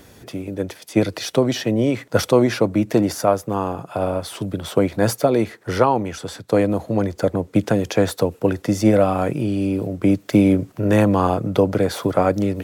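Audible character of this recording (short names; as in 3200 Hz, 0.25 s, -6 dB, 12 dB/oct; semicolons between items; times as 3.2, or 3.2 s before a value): noise floor -49 dBFS; spectral tilt -6.5 dB/oct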